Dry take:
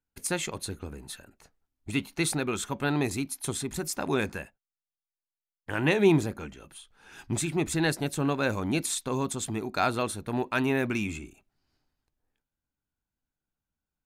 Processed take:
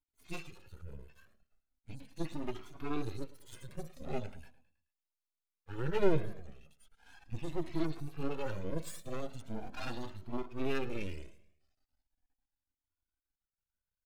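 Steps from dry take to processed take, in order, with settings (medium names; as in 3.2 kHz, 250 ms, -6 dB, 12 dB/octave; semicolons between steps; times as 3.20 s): harmonic-percussive separation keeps harmonic; half-wave rectifier; on a send: feedback delay 107 ms, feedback 48%, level -19 dB; on the sum: Shepard-style flanger rising 0.39 Hz; trim +3 dB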